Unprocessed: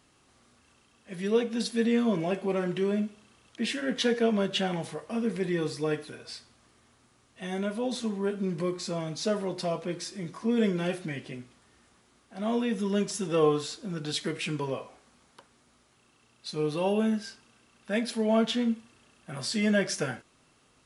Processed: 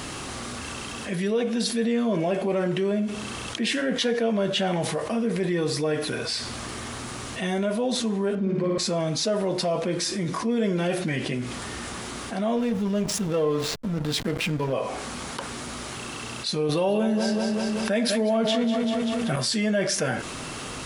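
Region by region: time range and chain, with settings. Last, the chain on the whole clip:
8.35–8.78 s: tape spacing loss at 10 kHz 22 dB + flutter echo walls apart 9.7 m, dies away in 1.4 s
12.56–14.73 s: comb of notches 370 Hz + hysteresis with a dead band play -33.5 dBFS
16.69–19.36 s: feedback delay 193 ms, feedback 47%, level -10 dB + level flattener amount 50%
whole clip: dynamic bell 610 Hz, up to +5 dB, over -41 dBFS, Q 2.7; level flattener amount 70%; trim -3 dB

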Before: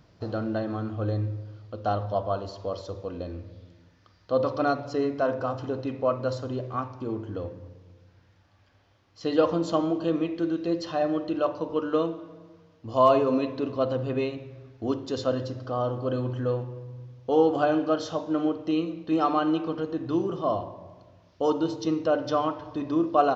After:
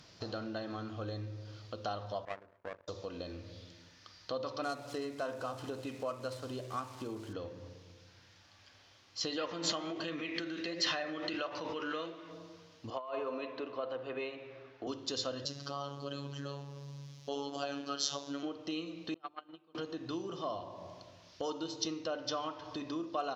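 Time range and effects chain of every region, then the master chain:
2.25–2.88 s: low-pass 1.1 kHz 24 dB/octave + hum notches 50/100 Hz + power-law waveshaper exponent 2
4.63–7.33 s: median filter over 9 samples + small samples zeroed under -50.5 dBFS
9.38–12.31 s: peaking EQ 2 kHz +13 dB 0.87 oct + flange 1.4 Hz, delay 5 ms, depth 8.8 ms, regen +74% + swell ahead of each attack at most 28 dB/s
12.90–14.87 s: three-band isolator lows -15 dB, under 340 Hz, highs -20 dB, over 2.7 kHz + compressor with a negative ratio -24 dBFS, ratio -0.5
15.45–18.43 s: robot voice 141 Hz + treble shelf 4.1 kHz +11 dB
19.14–19.75 s: gate -20 dBFS, range -35 dB + low-pass 4 kHz 24 dB/octave + hum notches 50/100/150/200/250/300/350/400 Hz
whole clip: bass shelf 81 Hz -8.5 dB; compression 2.5:1, threshold -40 dBFS; peaking EQ 5.7 kHz +14.5 dB 3 oct; trim -2.5 dB

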